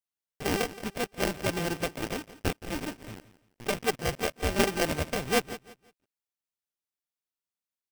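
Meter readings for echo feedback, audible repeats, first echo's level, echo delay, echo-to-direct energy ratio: 28%, 2, -16.0 dB, 171 ms, -15.5 dB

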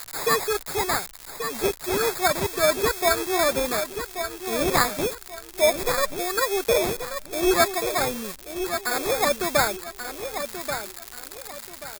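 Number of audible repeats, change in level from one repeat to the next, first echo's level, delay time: 3, -10.0 dB, -8.5 dB, 1133 ms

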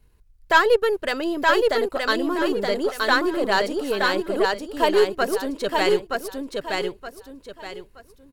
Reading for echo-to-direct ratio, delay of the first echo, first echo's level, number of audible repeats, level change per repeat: -2.5 dB, 922 ms, -3.0 dB, 4, -10.5 dB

